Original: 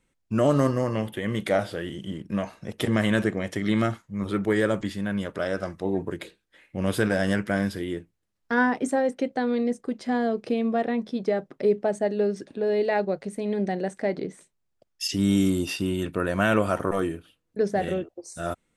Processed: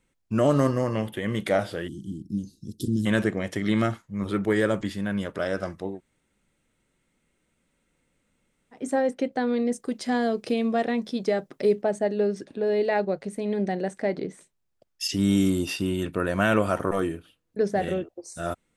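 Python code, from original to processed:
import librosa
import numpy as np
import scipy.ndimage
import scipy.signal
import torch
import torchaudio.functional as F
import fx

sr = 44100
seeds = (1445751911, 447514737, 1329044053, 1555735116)

y = fx.ellip_bandstop(x, sr, low_hz=320.0, high_hz=4400.0, order=3, stop_db=40, at=(1.87, 3.05), fade=0.02)
y = fx.high_shelf(y, sr, hz=3600.0, db=11.0, at=(9.72, 11.82))
y = fx.edit(y, sr, fx.room_tone_fill(start_s=5.89, length_s=2.94, crossfade_s=0.24), tone=tone)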